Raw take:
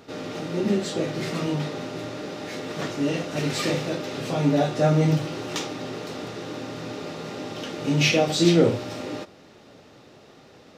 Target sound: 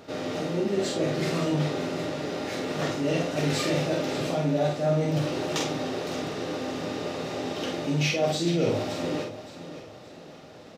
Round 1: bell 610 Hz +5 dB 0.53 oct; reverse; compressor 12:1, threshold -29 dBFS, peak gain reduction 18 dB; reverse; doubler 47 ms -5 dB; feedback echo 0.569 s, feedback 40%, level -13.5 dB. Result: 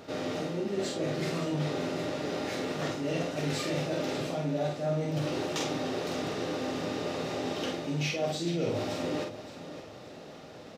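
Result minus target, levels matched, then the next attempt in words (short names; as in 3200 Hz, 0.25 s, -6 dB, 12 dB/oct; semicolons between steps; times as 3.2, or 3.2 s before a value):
compressor: peak gain reduction +6 dB
bell 610 Hz +5 dB 0.53 oct; reverse; compressor 12:1, threshold -22.5 dBFS, peak gain reduction 12 dB; reverse; doubler 47 ms -5 dB; feedback echo 0.569 s, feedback 40%, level -13.5 dB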